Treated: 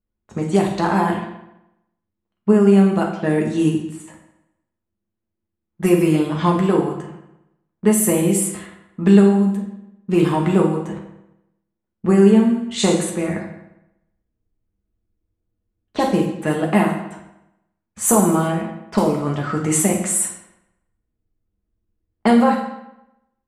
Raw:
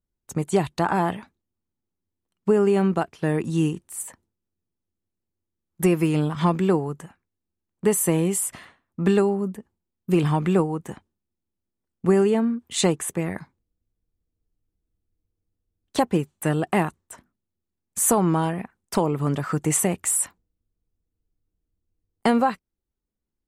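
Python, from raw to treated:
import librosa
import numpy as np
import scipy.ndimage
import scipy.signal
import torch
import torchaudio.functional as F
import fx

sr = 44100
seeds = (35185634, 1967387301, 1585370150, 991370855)

y = fx.rev_fdn(x, sr, rt60_s=0.87, lf_ratio=1.0, hf_ratio=0.95, size_ms=28.0, drr_db=-0.5)
y = fx.env_lowpass(y, sr, base_hz=2200.0, full_db=-14.0)
y = y * 10.0 ** (1.0 / 20.0)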